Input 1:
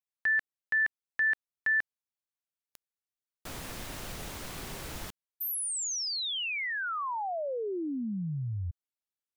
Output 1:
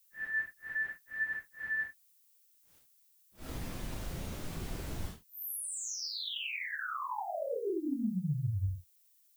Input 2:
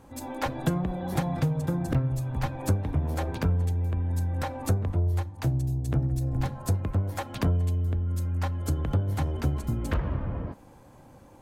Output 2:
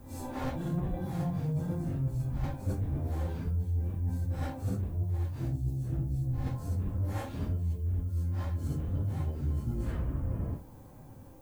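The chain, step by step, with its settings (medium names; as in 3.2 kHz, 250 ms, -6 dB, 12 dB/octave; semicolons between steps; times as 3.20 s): phase randomisation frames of 200 ms; bass shelf 410 Hz +10.5 dB; reverse; compression, threshold -23 dBFS; reverse; added noise violet -61 dBFS; trim -6 dB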